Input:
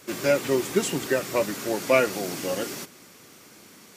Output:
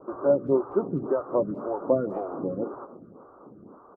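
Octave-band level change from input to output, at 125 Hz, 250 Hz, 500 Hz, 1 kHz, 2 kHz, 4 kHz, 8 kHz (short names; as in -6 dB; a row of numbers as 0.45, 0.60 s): -0.5 dB, -0.5 dB, -0.5 dB, -3.5 dB, -22.0 dB, under -40 dB, under -40 dB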